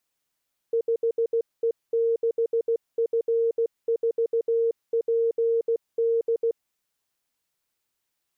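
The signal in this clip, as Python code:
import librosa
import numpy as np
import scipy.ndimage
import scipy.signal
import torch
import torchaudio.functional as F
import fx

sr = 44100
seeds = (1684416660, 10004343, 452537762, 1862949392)

y = fx.morse(sr, text='5E6F4PD', wpm=16, hz=460.0, level_db=-19.5)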